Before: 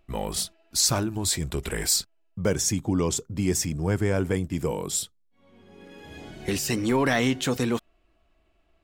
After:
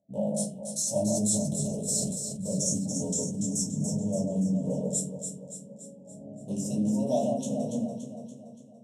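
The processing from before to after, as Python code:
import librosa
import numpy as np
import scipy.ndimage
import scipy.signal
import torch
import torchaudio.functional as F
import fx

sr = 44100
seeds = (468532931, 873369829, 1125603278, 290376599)

y = fx.wiener(x, sr, points=41)
y = scipy.signal.sosfilt(scipy.signal.ellip(3, 1.0, 70, [570.0, 5100.0], 'bandstop', fs=sr, output='sos'), y)
y = fx.high_shelf(y, sr, hz=5400.0, db=-3.5)
y = fx.over_compress(y, sr, threshold_db=-28.0, ratio=-1.0)
y = fx.cabinet(y, sr, low_hz=190.0, low_slope=24, high_hz=9500.0, hz=(300.0, 480.0, 2800.0), db=(-6, -9, 6))
y = fx.fixed_phaser(y, sr, hz=1300.0, stages=6)
y = fx.echo_alternate(y, sr, ms=143, hz=1600.0, feedback_pct=72, wet_db=-4.0)
y = fx.room_shoebox(y, sr, seeds[0], volume_m3=130.0, walls='furnished', distance_m=2.5)
y = fx.sustainer(y, sr, db_per_s=34.0, at=(0.99, 3.47))
y = y * 10.0 ** (3.0 / 20.0)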